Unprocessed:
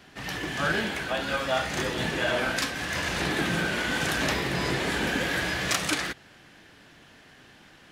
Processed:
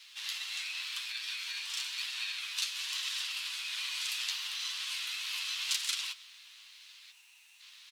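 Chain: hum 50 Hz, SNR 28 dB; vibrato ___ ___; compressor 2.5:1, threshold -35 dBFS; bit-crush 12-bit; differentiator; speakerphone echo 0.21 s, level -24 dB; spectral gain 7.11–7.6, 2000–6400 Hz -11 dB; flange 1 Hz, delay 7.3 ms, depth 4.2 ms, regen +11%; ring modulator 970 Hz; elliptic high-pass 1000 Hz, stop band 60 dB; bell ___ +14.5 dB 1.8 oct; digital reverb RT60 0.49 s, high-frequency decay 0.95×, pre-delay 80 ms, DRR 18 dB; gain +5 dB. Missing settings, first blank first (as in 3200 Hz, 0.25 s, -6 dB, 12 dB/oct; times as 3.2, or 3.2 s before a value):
9.1 Hz, 5.8 cents, 3500 Hz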